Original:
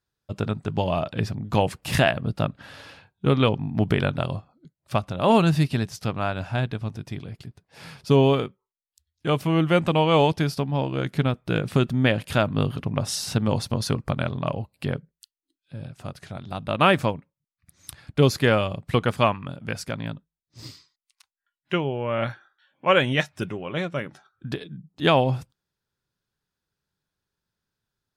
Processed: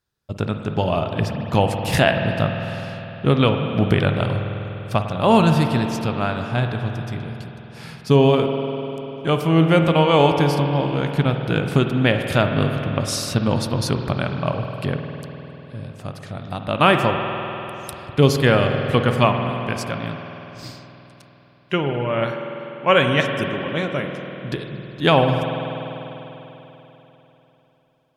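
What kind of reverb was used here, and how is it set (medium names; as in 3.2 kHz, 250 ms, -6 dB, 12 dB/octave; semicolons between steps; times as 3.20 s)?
spring tank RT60 3.7 s, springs 49 ms, chirp 30 ms, DRR 4.5 dB; trim +3 dB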